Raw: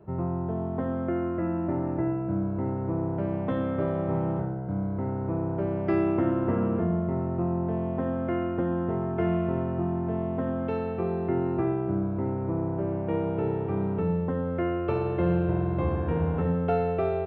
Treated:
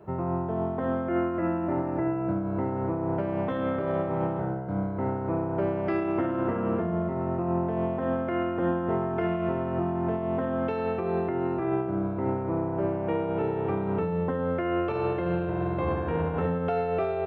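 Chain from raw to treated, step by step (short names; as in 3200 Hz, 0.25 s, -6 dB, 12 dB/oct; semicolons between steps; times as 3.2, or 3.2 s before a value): low shelf 320 Hz -9.5 dB; limiter -26 dBFS, peak gain reduction 9 dB; tremolo triangle 3.6 Hz, depth 35%; gain +8 dB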